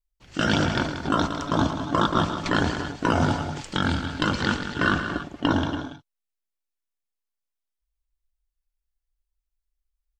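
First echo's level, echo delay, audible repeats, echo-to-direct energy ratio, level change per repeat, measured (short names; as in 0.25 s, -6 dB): -11.5 dB, 0.112 s, 3, -6.5 dB, no steady repeat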